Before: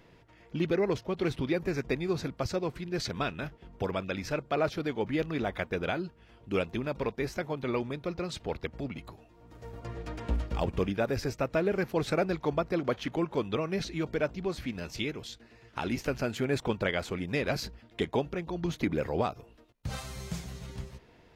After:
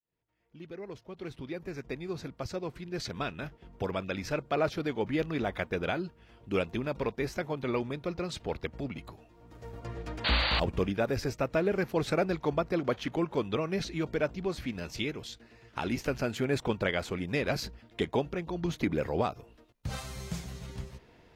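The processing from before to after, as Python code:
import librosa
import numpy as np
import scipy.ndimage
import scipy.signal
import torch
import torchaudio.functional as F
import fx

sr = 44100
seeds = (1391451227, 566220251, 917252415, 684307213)

y = fx.fade_in_head(x, sr, length_s=4.36)
y = fx.spec_paint(y, sr, seeds[0], shape='noise', start_s=10.24, length_s=0.36, low_hz=500.0, high_hz=4700.0, level_db=-29.0)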